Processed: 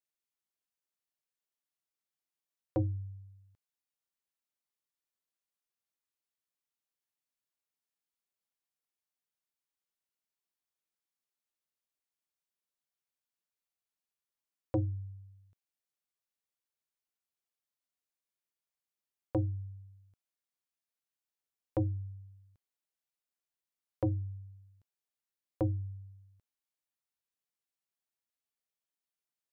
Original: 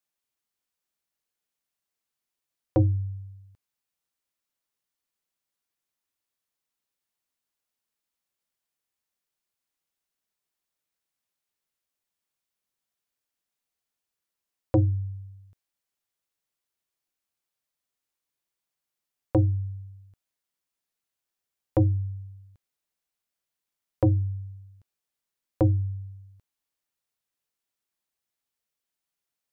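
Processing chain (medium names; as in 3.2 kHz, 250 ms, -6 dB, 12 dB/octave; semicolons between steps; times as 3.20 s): bass shelf 100 Hz -4.5 dB; trim -8.5 dB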